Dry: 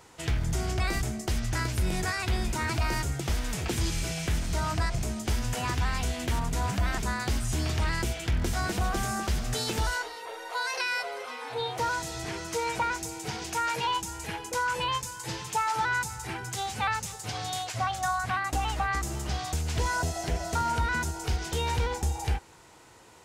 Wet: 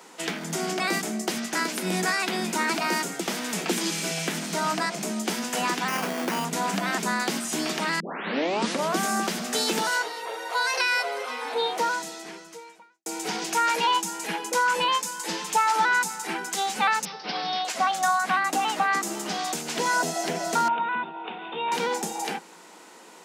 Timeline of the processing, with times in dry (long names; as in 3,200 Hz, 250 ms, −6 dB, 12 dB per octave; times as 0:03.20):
0:05.88–0:06.45: sample-rate reduction 3,900 Hz
0:08.00: tape start 1.00 s
0:11.69–0:13.06: fade out quadratic
0:17.05–0:17.65: Butterworth low-pass 5,500 Hz 96 dB per octave
0:20.68–0:21.72: Chebyshev low-pass with heavy ripple 3,700 Hz, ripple 9 dB
whole clip: Butterworth high-pass 170 Hz 96 dB per octave; level +6 dB